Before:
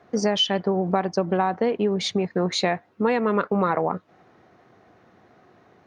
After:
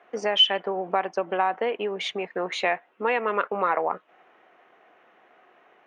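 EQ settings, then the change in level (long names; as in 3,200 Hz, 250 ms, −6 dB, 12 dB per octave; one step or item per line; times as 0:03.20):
high-pass filter 500 Hz 12 dB per octave
high shelf with overshoot 3,600 Hz −7 dB, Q 3
0.0 dB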